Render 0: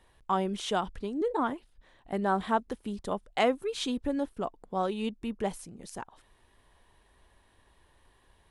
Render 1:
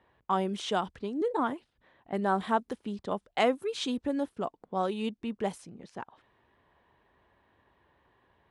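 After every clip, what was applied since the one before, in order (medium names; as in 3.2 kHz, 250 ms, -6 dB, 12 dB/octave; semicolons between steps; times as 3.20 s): high-pass 100 Hz 12 dB/octave; level-controlled noise filter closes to 2.2 kHz, open at -26.5 dBFS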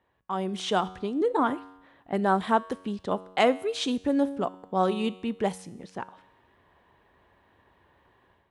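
level rider gain up to 10 dB; feedback comb 93 Hz, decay 0.93 s, harmonics all, mix 50%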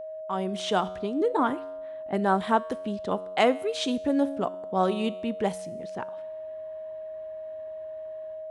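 whistle 630 Hz -35 dBFS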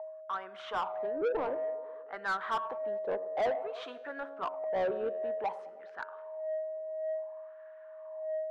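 wah-wah 0.55 Hz 490–1500 Hz, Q 4.2; band-passed feedback delay 104 ms, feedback 75%, band-pass 450 Hz, level -20 dB; overdrive pedal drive 23 dB, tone 2.1 kHz, clips at -15.5 dBFS; trim -7 dB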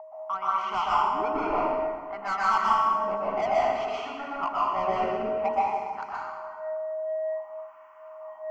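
static phaser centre 2.5 kHz, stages 8; plate-style reverb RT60 1.6 s, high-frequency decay 0.7×, pre-delay 110 ms, DRR -7 dB; trim +6 dB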